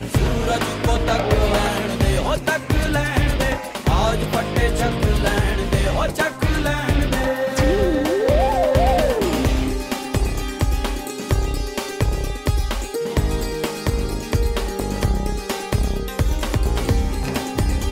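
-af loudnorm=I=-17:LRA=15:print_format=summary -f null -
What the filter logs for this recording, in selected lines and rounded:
Input Integrated:    -21.2 LUFS
Input True Peak:      -3.7 dBTP
Input LRA:             4.3 LU
Input Threshold:     -31.2 LUFS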